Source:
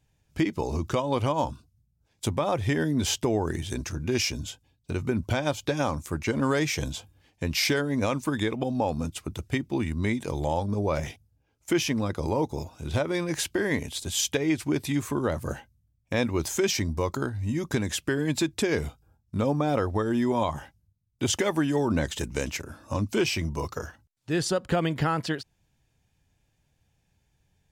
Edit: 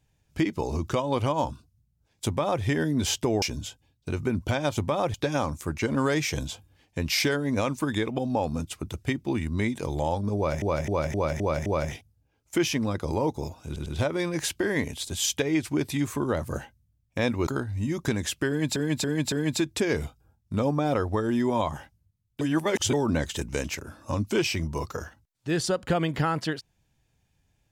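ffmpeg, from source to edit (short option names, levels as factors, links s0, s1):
-filter_complex "[0:a]asplit=17[s0][s1][s2][s3][s4][s5][s6][s7][s8][s9][s10][s11][s12][s13][s14][s15][s16];[s0]atrim=end=3.422[s17];[s1]atrim=start=4.238:end=5.592[s18];[s2]atrim=start=2.258:end=2.632[s19];[s3]atrim=start=5.588:end=11.072[s20];[s4]atrim=start=10.808:end=11.072[s21];[s5]atrim=start=10.808:end=11.072[s22];[s6]atrim=start=10.808:end=11.072[s23];[s7]atrim=start=10.808:end=11.072[s24];[s8]atrim=start=10.808:end=12.912[s25];[s9]atrim=start=12.808:end=12.912[s26];[s10]atrim=start=12.808:end=16.422[s27];[s11]atrim=start=17.128:end=18.422[s28];[s12]atrim=start=18.138:end=18.422[s29];[s13]atrim=start=18.138:end=18.422[s30];[s14]atrim=start=18.138:end=21.232[s31];[s15]atrim=start=21.228:end=21.752,asetpts=PTS-STARTPTS,areverse[s32];[s16]atrim=start=21.748[s33];[s17][s18]acrossfade=d=0.004:c1=hsin:c2=hsin[s34];[s34][s19]acrossfade=d=0.004:c1=hsin:c2=hsin[s35];[s35][s20]acrossfade=d=0.004:c1=hsin:c2=hsin[s36];[s36][s21]acrossfade=d=0.004:c1=hsin:c2=hsin[s37];[s37][s22]acrossfade=d=0.004:c1=hsin:c2=hsin[s38];[s38][s23]acrossfade=d=0.004:c1=hsin:c2=hsin[s39];[s39][s24]acrossfade=d=0.004:c1=hsin:c2=hsin[s40];[s40][s25]acrossfade=d=0.004:c1=hsin:c2=hsin[s41];[s41][s26]acrossfade=d=0.004:c1=hsin:c2=hsin[s42];[s42][s27]acrossfade=d=0.004:c1=hsin:c2=hsin[s43];[s43][s28]acrossfade=d=0.004:c1=hsin:c2=hsin[s44];[s44][s29]acrossfade=d=0.004:c1=hsin:c2=hsin[s45];[s45][s30]acrossfade=d=0.004:c1=hsin:c2=hsin[s46];[s46][s31]acrossfade=d=0.004:c1=hsin:c2=hsin[s47];[s47][s32]acrossfade=d=0.004:c1=hsin:c2=hsin[s48];[s48][s33]acrossfade=d=0.004:c1=hsin:c2=hsin"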